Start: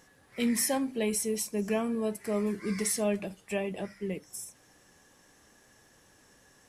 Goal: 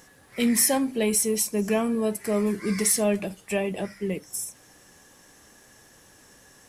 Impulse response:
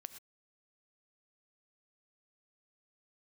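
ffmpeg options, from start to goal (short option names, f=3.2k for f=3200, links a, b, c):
-filter_complex "[0:a]highshelf=f=8.4k:g=6,asplit=2[a][b];[b]asoftclip=type=tanh:threshold=-25dB,volume=-9.5dB[c];[a][c]amix=inputs=2:normalize=0,volume=3.5dB"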